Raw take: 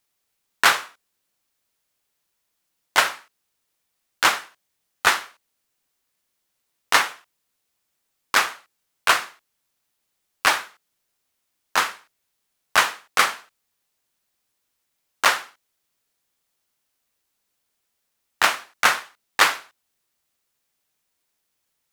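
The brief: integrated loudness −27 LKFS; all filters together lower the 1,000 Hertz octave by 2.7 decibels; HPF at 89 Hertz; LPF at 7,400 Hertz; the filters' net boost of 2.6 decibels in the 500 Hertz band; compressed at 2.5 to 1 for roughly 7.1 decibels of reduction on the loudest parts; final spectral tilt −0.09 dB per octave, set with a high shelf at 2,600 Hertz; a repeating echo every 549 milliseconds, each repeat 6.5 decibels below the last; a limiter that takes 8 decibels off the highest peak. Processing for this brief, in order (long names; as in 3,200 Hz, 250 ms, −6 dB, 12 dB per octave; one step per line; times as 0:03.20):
high-pass filter 89 Hz
low-pass filter 7,400 Hz
parametric band 500 Hz +5 dB
parametric band 1,000 Hz −4 dB
high-shelf EQ 2,600 Hz −3 dB
downward compressor 2.5 to 1, threshold −25 dBFS
brickwall limiter −15 dBFS
repeating echo 549 ms, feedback 47%, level −6.5 dB
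level +8 dB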